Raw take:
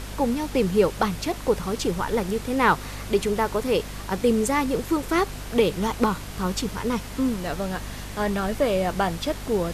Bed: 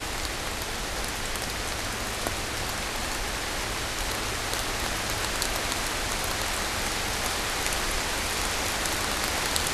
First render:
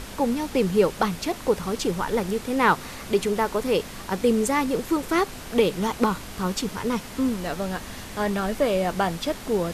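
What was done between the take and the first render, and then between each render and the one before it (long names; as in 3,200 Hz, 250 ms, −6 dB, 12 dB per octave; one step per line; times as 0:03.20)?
hum removal 50 Hz, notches 3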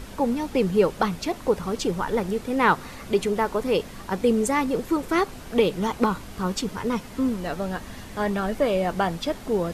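broadband denoise 6 dB, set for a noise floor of −39 dBFS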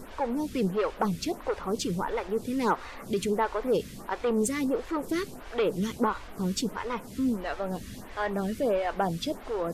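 soft clipping −16.5 dBFS, distortion −15 dB
phaser with staggered stages 1.5 Hz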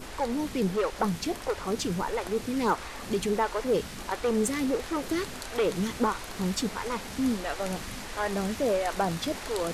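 mix in bed −12.5 dB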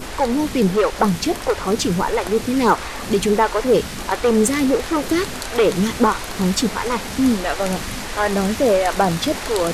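level +10.5 dB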